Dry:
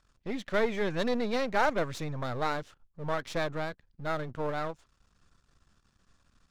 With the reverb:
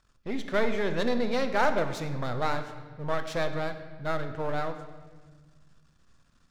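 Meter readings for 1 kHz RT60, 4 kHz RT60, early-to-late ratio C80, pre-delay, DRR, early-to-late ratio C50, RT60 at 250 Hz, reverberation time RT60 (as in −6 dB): 1.4 s, 1.3 s, 11.0 dB, 8 ms, 7.5 dB, 9.5 dB, 2.3 s, 1.5 s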